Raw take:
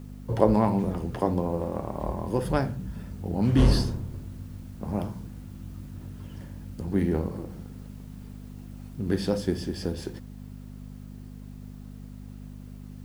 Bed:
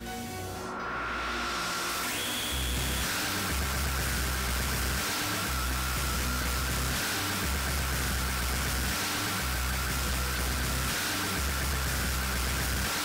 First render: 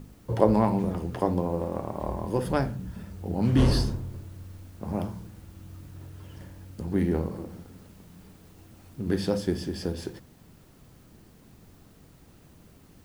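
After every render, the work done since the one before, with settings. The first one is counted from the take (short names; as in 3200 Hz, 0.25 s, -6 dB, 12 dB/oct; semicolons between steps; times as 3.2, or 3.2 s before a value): de-hum 50 Hz, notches 5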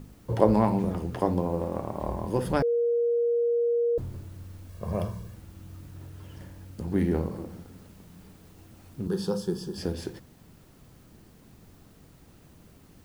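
2.62–3.98 bleep 472 Hz -21.5 dBFS; 4.69–5.35 comb 1.8 ms, depth 71%; 9.07–9.78 fixed phaser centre 420 Hz, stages 8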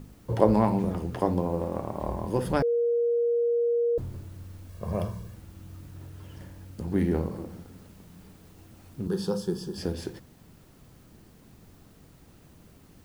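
nothing audible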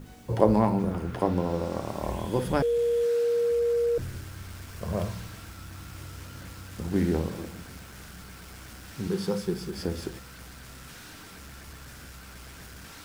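add bed -16 dB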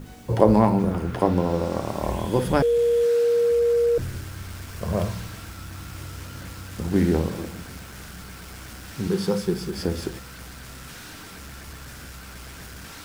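gain +5 dB; limiter -1 dBFS, peak gain reduction 2 dB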